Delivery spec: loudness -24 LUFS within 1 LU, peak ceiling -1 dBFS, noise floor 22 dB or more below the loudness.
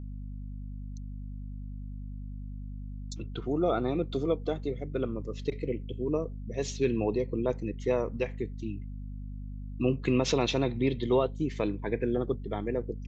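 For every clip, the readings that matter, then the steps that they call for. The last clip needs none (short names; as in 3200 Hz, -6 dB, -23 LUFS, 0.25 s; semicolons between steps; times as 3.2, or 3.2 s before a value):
hum 50 Hz; harmonics up to 250 Hz; hum level -36 dBFS; loudness -31.0 LUFS; peak -13.5 dBFS; loudness target -24.0 LUFS
-> de-hum 50 Hz, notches 5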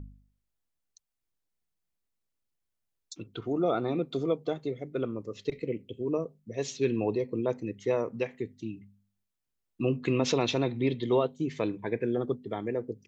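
hum none; loudness -31.0 LUFS; peak -14.0 dBFS; loudness target -24.0 LUFS
-> gain +7 dB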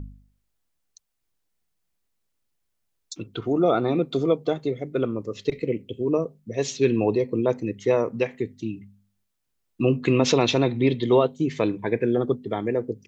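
loudness -24.0 LUFS; peak -7.0 dBFS; noise floor -76 dBFS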